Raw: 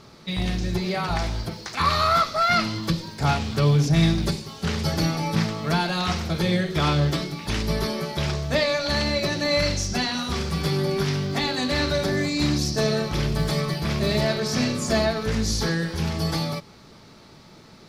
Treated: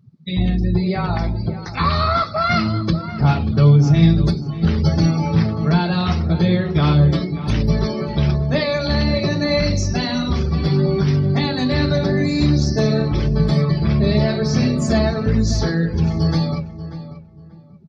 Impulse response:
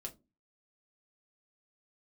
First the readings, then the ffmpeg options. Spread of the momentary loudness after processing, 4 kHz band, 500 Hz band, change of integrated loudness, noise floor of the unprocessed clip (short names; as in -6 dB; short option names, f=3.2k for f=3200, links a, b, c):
7 LU, -0.5 dB, +3.5 dB, +5.5 dB, -48 dBFS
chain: -filter_complex "[0:a]highpass=58,afftdn=nr=35:nf=-34,lowshelf=f=310:g=10.5,asplit=2[a][b];[b]acompressor=threshold=-25dB:ratio=16,volume=-2dB[c];[a][c]amix=inputs=2:normalize=0,flanger=delay=0.3:depth=9.8:regen=-71:speed=0.39:shape=triangular,asplit=2[d][e];[e]adelay=587,lowpass=f=2.2k:p=1,volume=-13dB,asplit=2[f][g];[g]adelay=587,lowpass=f=2.2k:p=1,volume=0.24,asplit=2[h][i];[i]adelay=587,lowpass=f=2.2k:p=1,volume=0.24[j];[d][f][h][j]amix=inputs=4:normalize=0,volume=3dB"